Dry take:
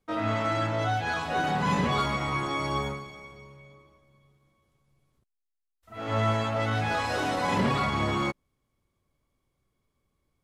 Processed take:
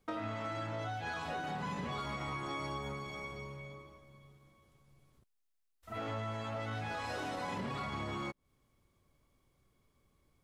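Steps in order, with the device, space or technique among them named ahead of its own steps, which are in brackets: serial compression, leveller first (compressor 2:1, threshold -31 dBFS, peak gain reduction 6 dB; compressor 4:1, threshold -42 dBFS, peak gain reduction 13 dB); gain +3.5 dB

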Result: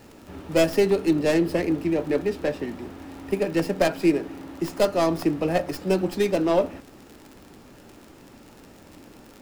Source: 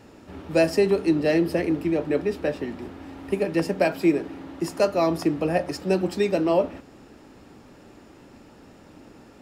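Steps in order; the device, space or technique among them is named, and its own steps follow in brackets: record under a worn stylus (tracing distortion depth 0.17 ms; crackle 45/s -35 dBFS; pink noise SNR 33 dB)

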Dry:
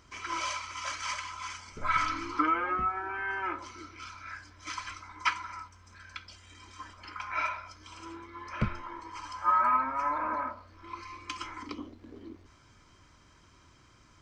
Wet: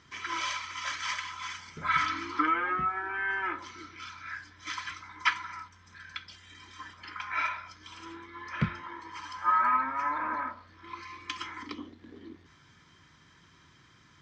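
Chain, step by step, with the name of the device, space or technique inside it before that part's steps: car door speaker (speaker cabinet 81–7400 Hz, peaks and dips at 160 Hz +9 dB, 600 Hz -6 dB, 1800 Hz +9 dB, 3500 Hz +8 dB); gain -1 dB

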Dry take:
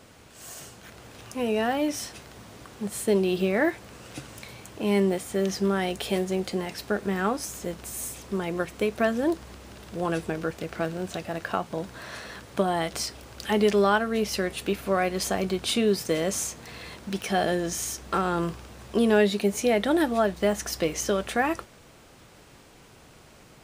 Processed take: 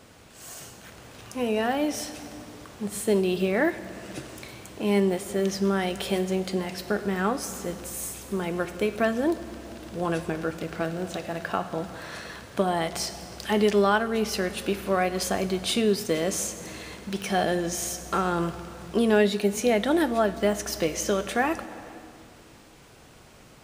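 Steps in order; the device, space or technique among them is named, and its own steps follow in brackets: compressed reverb return (on a send at -8.5 dB: reverb RT60 2.1 s, pre-delay 19 ms + compressor, threshold -26 dBFS, peak gain reduction 11 dB)

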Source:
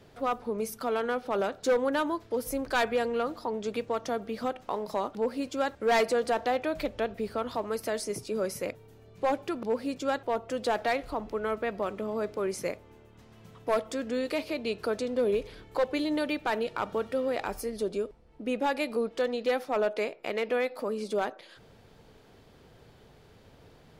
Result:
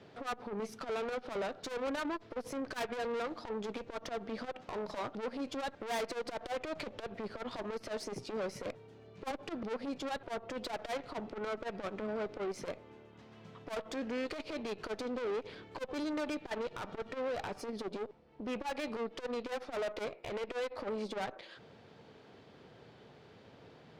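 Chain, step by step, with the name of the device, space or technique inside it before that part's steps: valve radio (BPF 130–4700 Hz; tube stage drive 35 dB, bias 0.5; core saturation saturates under 210 Hz); gain +2.5 dB

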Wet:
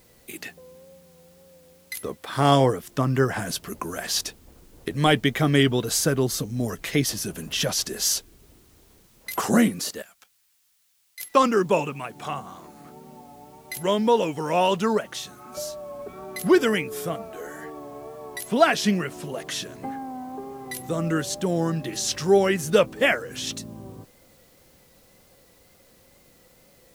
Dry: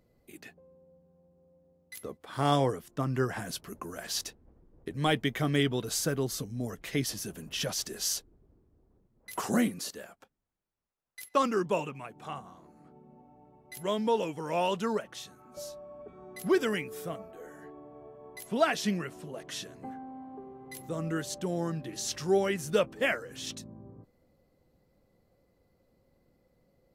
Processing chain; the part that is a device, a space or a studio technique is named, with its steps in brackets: noise-reduction cassette on a plain deck (mismatched tape noise reduction encoder only; wow and flutter; white noise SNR 34 dB); 10.02–11.2 passive tone stack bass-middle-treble 5-5-5; gain +8 dB

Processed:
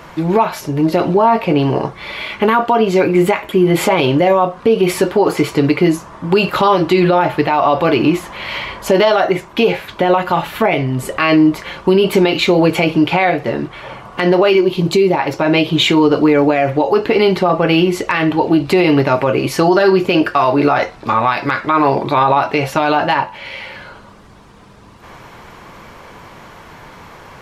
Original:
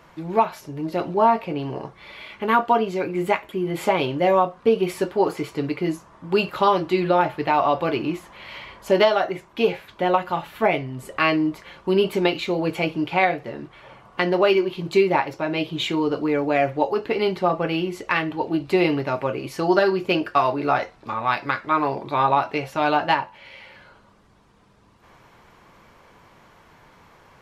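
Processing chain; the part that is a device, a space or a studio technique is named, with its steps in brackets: loud club master (compressor 1.5:1, threshold -23 dBFS, peak gain reduction 4.5 dB; hard clip -8.5 dBFS, distortion -48 dB; maximiser +17 dB); 14.6–15.19 dynamic EQ 1700 Hz, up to -7 dB, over -28 dBFS, Q 0.79; gain -2.5 dB

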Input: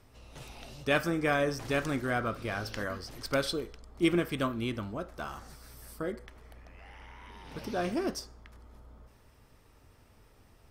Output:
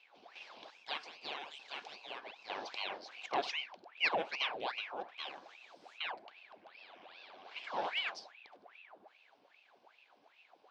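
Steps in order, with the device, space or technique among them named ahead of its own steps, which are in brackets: 0.7–2.5 passive tone stack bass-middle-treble 10-0-10; voice changer toy (ring modulator with a swept carrier 1400 Hz, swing 90%, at 2.5 Hz; speaker cabinet 510–4500 Hz, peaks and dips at 750 Hz +4 dB, 1300 Hz -8 dB, 1900 Hz -9 dB)

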